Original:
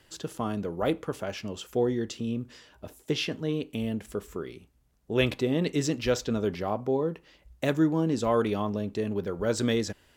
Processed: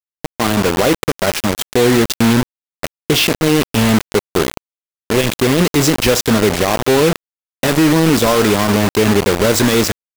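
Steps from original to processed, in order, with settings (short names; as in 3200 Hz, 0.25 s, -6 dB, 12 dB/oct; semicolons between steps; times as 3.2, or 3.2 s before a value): AGC gain up to 12 dB; limiter -12 dBFS, peak gain reduction 10.5 dB; bit-crush 4-bit; gain +7.5 dB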